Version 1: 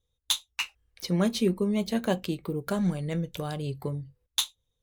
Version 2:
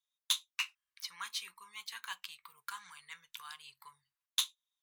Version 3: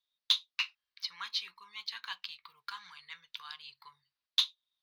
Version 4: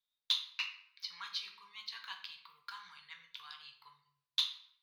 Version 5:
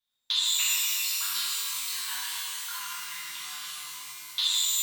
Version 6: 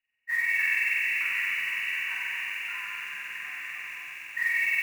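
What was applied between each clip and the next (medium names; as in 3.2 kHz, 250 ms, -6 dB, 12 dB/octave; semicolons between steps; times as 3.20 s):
elliptic high-pass 1 kHz, stop band 40 dB; trim -4.5 dB
resonant high shelf 6.1 kHz -11.5 dB, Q 3
simulated room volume 150 m³, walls mixed, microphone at 0.61 m; trim -5.5 dB
pitch-shifted reverb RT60 3.2 s, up +12 st, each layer -2 dB, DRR -8.5 dB; trim +1 dB
knee-point frequency compression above 1.5 kHz 4:1; modulation noise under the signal 22 dB; bit-crushed delay 272 ms, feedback 80%, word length 7-bit, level -11 dB; trim -4 dB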